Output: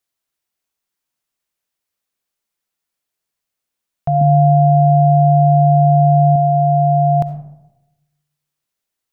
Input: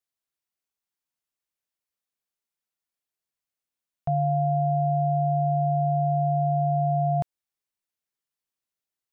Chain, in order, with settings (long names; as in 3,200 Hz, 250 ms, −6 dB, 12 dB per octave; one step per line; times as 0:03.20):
0:04.21–0:06.36: parametric band 240 Hz +11.5 dB 0.92 octaves
convolution reverb RT60 0.95 s, pre-delay 25 ms, DRR 10 dB
level +8.5 dB